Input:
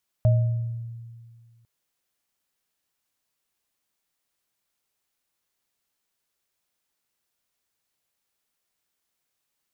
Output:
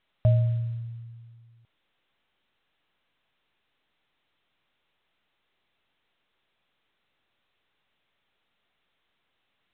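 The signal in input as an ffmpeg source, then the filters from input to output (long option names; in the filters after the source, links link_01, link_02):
-f lavfi -i "aevalsrc='0.2*pow(10,-3*t/1.96)*sin(2*PI*116*t)+0.0631*pow(10,-3*t/0.73)*sin(2*PI*623*t)':duration=1.4:sample_rate=44100"
-af "aemphasis=mode=production:type=cd" -ar 8000 -c:a pcm_mulaw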